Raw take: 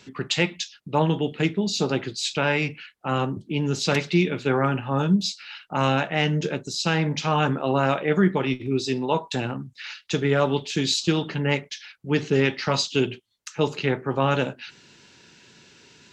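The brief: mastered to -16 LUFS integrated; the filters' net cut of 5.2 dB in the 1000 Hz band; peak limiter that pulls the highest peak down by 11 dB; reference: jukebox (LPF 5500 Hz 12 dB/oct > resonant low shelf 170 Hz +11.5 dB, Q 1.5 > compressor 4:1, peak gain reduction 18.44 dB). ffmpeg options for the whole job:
-af "equalizer=f=1k:t=o:g=-6.5,alimiter=limit=-20.5dB:level=0:latency=1,lowpass=5.5k,lowshelf=f=170:t=q:w=1.5:g=11.5,acompressor=threshold=-38dB:ratio=4,volume=23.5dB"

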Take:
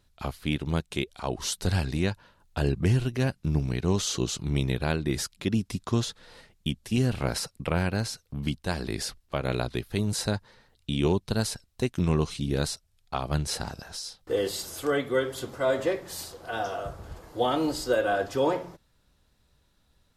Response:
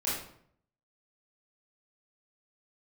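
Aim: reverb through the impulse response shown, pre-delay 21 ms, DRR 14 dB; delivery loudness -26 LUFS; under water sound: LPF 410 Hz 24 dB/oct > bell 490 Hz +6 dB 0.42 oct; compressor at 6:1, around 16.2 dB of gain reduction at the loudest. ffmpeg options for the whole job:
-filter_complex "[0:a]acompressor=threshold=-38dB:ratio=6,asplit=2[a][b];[1:a]atrim=start_sample=2205,adelay=21[c];[b][c]afir=irnorm=-1:irlink=0,volume=-21dB[d];[a][d]amix=inputs=2:normalize=0,lowpass=f=410:w=0.5412,lowpass=f=410:w=1.3066,equalizer=f=490:t=o:w=0.42:g=6,volume=18.5dB"

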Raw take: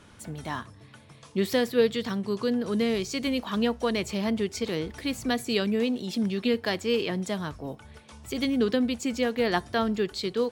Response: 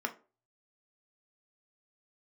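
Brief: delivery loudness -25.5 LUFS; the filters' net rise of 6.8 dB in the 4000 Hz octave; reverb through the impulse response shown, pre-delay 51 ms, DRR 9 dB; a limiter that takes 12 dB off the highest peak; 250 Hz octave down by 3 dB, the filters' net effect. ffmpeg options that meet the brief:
-filter_complex "[0:a]equalizer=f=250:t=o:g=-3.5,equalizer=f=4k:t=o:g=8.5,alimiter=limit=-19.5dB:level=0:latency=1,asplit=2[a][b];[1:a]atrim=start_sample=2205,adelay=51[c];[b][c]afir=irnorm=-1:irlink=0,volume=-13.5dB[d];[a][d]amix=inputs=2:normalize=0,volume=4.5dB"

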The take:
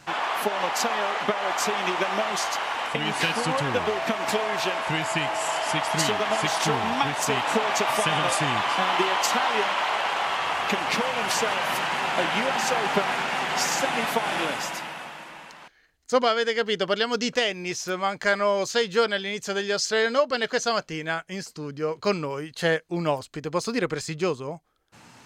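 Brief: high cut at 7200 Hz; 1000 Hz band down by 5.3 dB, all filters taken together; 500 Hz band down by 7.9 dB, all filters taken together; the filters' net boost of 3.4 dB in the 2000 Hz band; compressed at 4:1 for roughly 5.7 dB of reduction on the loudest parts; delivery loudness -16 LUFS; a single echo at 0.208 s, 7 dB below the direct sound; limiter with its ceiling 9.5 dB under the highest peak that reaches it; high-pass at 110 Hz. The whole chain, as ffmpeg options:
-af "highpass=110,lowpass=7.2k,equalizer=f=500:t=o:g=-8.5,equalizer=f=1k:t=o:g=-6,equalizer=f=2k:t=o:g=6.5,acompressor=threshold=-26dB:ratio=4,alimiter=limit=-22dB:level=0:latency=1,aecho=1:1:208:0.447,volume=14dB"

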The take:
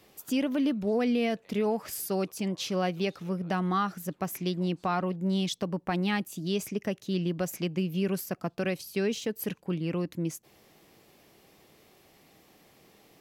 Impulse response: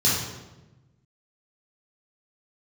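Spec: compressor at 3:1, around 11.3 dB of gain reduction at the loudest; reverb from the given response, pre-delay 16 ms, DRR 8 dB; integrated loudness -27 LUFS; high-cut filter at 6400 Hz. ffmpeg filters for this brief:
-filter_complex "[0:a]lowpass=6.4k,acompressor=threshold=-40dB:ratio=3,asplit=2[a][b];[1:a]atrim=start_sample=2205,adelay=16[c];[b][c]afir=irnorm=-1:irlink=0,volume=-22.5dB[d];[a][d]amix=inputs=2:normalize=0,volume=12dB"

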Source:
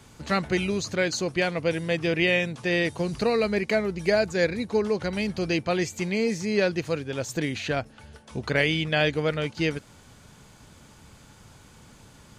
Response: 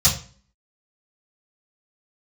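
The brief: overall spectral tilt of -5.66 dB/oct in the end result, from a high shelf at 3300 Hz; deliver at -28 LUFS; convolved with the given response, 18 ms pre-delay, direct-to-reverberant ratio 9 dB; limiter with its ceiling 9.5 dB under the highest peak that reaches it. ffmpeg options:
-filter_complex "[0:a]highshelf=f=3.3k:g=-6.5,alimiter=limit=-19dB:level=0:latency=1,asplit=2[a][b];[1:a]atrim=start_sample=2205,adelay=18[c];[b][c]afir=irnorm=-1:irlink=0,volume=-24.5dB[d];[a][d]amix=inputs=2:normalize=0,volume=-0.5dB"

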